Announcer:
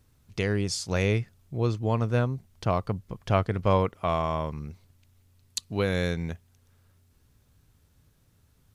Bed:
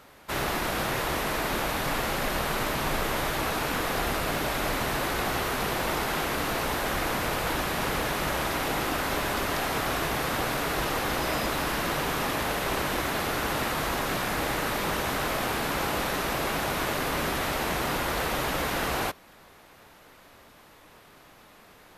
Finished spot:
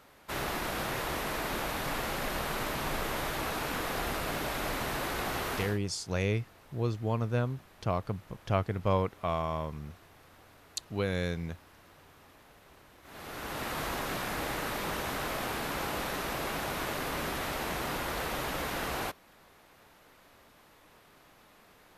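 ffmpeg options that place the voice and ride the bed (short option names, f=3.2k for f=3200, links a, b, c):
-filter_complex "[0:a]adelay=5200,volume=-5dB[a];[1:a]volume=18dB,afade=t=out:st=5.56:d=0.23:silence=0.0630957,afade=t=in:st=13.02:d=0.77:silence=0.0668344[b];[a][b]amix=inputs=2:normalize=0"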